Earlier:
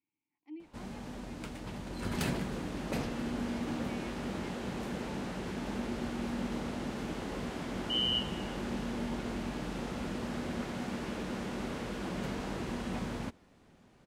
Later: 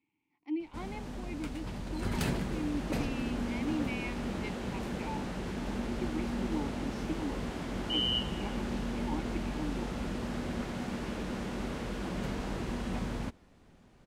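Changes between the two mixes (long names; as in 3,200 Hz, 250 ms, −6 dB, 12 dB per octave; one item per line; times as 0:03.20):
speech +11.5 dB
background: add low-shelf EQ 65 Hz +10.5 dB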